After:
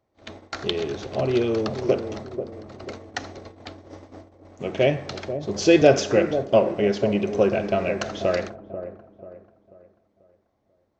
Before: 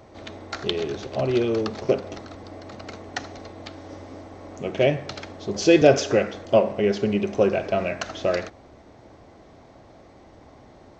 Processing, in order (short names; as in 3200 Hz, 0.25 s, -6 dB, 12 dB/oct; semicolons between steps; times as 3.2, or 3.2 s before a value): gate -38 dBFS, range -25 dB; dark delay 0.489 s, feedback 37%, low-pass 790 Hz, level -9 dB